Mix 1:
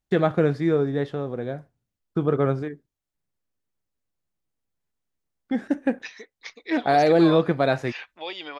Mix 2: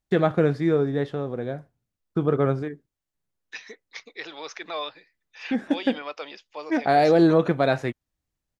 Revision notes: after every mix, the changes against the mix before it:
second voice: entry −2.50 s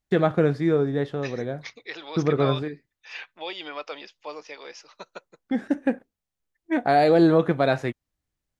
second voice: entry −2.30 s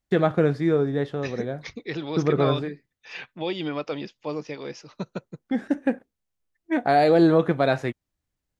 second voice: remove high-pass filter 680 Hz 12 dB per octave

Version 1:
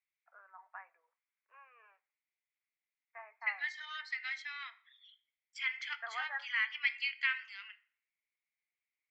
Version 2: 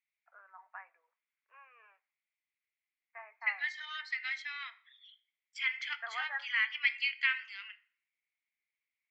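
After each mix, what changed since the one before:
master: add parametric band 2,700 Hz +3.5 dB 1.4 octaves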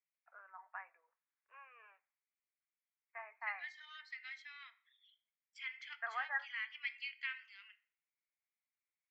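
second voice −12.0 dB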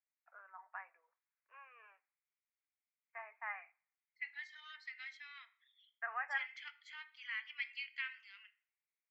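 second voice: entry +0.75 s

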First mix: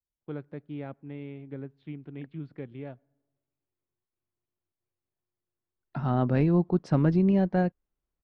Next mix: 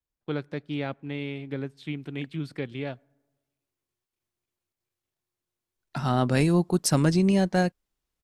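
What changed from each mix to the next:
first voice +5.0 dB
master: remove head-to-tape spacing loss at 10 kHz 43 dB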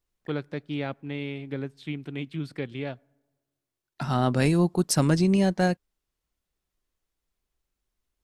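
second voice: entry −1.95 s

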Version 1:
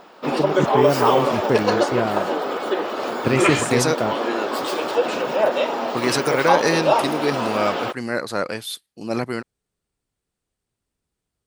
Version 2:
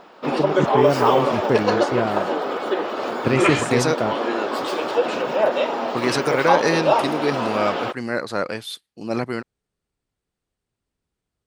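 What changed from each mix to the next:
master: add high-shelf EQ 8,600 Hz −11 dB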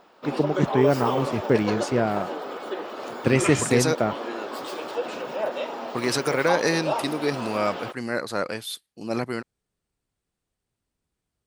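second voice −3.0 dB
background −9.0 dB
master: add high-shelf EQ 8,600 Hz +11 dB

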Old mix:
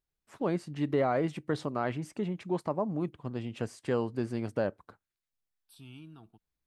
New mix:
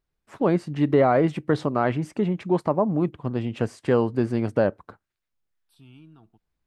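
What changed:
first voice +9.5 dB
master: add high-shelf EQ 3,600 Hz −8.5 dB

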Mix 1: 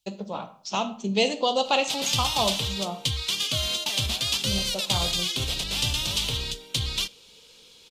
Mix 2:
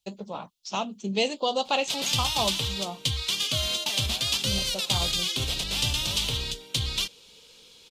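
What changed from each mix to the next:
reverb: off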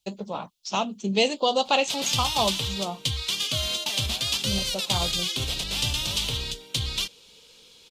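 first voice +3.5 dB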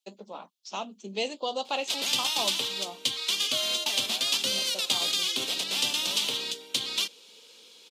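first voice −8.5 dB
master: add high-pass filter 230 Hz 24 dB per octave

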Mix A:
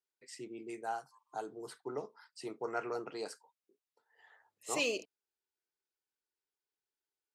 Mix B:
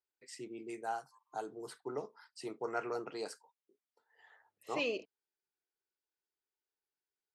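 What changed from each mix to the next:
second voice: add high-frequency loss of the air 210 metres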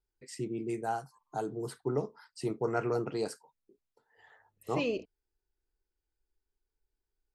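first voice +3.5 dB
master: remove meter weighting curve A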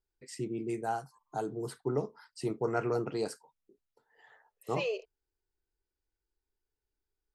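second voice: add linear-phase brick-wall high-pass 380 Hz

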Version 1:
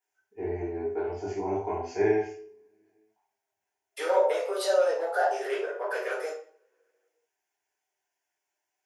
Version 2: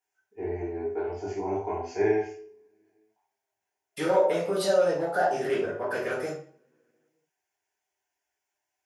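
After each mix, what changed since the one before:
second voice: remove Chebyshev high-pass filter 430 Hz, order 4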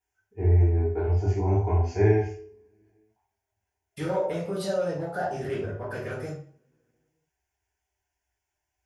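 second voice −5.5 dB
master: remove high-pass filter 310 Hz 12 dB per octave

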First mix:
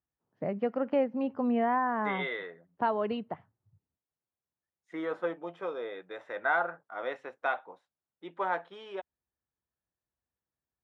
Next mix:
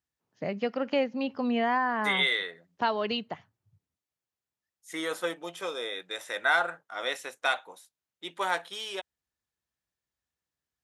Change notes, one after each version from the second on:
master: remove low-pass filter 1,300 Hz 12 dB per octave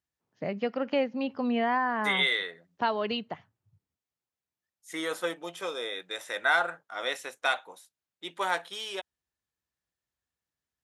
first voice: add high-frequency loss of the air 80 metres

